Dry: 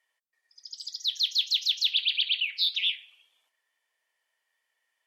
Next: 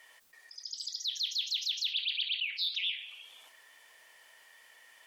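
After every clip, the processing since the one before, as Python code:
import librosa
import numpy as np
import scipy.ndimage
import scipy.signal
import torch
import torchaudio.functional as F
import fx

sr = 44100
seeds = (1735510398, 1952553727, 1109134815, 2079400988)

y = fx.env_flatten(x, sr, amount_pct=50)
y = y * 10.0 ** (-8.5 / 20.0)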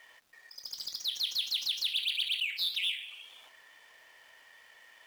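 y = scipy.signal.medfilt(x, 5)
y = y * 10.0 ** (2.0 / 20.0)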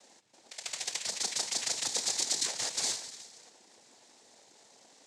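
y = fx.bit_reversed(x, sr, seeds[0], block=32)
y = fx.noise_vocoder(y, sr, seeds[1], bands=6)
y = y * 10.0 ** (6.0 / 20.0)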